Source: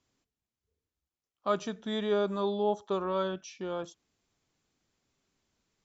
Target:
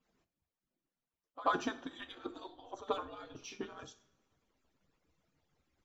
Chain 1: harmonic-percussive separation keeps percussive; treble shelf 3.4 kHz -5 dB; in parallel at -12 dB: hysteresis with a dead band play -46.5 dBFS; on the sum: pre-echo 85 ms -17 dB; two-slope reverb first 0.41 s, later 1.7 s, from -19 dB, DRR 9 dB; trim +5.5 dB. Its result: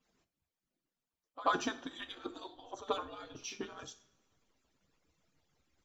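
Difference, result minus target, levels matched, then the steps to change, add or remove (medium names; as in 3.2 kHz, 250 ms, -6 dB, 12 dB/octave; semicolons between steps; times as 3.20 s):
8 kHz band +5.5 dB
change: treble shelf 3.4 kHz -12.5 dB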